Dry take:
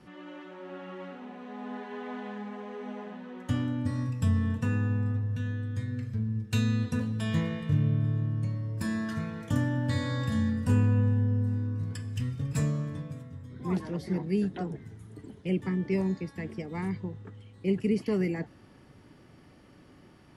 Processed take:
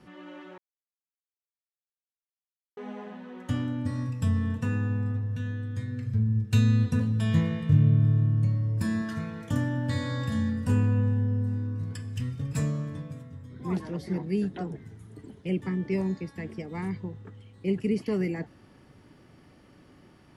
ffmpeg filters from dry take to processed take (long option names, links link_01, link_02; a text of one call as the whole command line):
ffmpeg -i in.wav -filter_complex "[0:a]asettb=1/sr,asplit=3[link_01][link_02][link_03];[link_01]atrim=end=6.054[link_04];[link_02]atrim=start=6.05:end=9.02,asetpts=PTS-STARTPTS,afade=type=in:duration=0.004:curve=qsin,afade=type=out:start_time=2.966:duration=0.004:curve=qsin,equalizer=frequency=110:width_type=o:width=1.8:gain=6.5[link_05];[link_03]atrim=start=9.016[link_06];[link_04][link_05]acrossfade=duration=0.004:curve1=hsin:curve2=qsin[link_07];[link_07][link_06]acrossfade=duration=0.004:curve1=qsin:curve2=hsin,asplit=3[link_08][link_09][link_10];[link_08]atrim=end=0.58,asetpts=PTS-STARTPTS,afade=type=out:start_time=0.576:duration=0.004:curve=hsin[link_11];[link_09]atrim=start=0.58:end=2.77,asetpts=PTS-STARTPTS,volume=0[link_12];[link_10]atrim=start=2.77,asetpts=PTS-STARTPTS,afade=type=in:duration=0.004:curve=hsin[link_13];[link_11][link_12][link_13]concat=n=3:v=0:a=1" out.wav